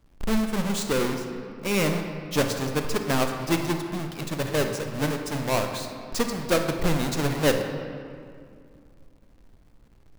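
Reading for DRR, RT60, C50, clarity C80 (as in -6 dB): 4.5 dB, 2.3 s, 5.5 dB, 7.0 dB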